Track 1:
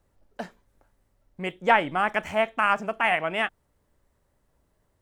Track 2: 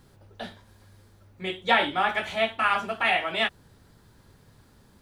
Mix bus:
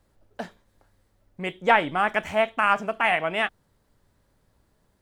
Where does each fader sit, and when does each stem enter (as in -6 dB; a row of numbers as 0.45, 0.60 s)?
+1.0, -13.5 dB; 0.00, 0.00 s